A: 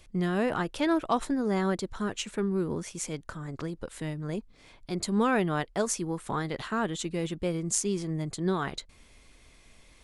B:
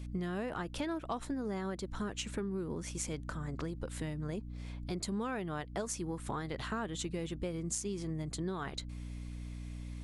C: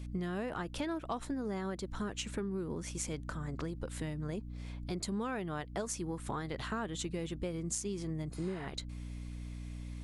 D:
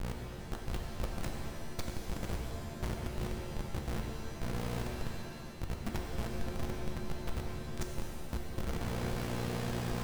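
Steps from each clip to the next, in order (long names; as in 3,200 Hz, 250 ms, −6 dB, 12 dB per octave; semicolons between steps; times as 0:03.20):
mains hum 60 Hz, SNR 11 dB; downward compressor, threshold −33 dBFS, peak gain reduction 12 dB; level −1 dB
healed spectral selection 0:08.35–0:08.63, 730–10,000 Hz both
compressor whose output falls as the input rises −44 dBFS, ratio −0.5; comparator with hysteresis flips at −37 dBFS; reverb with rising layers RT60 2 s, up +7 semitones, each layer −2 dB, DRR 2 dB; level +10 dB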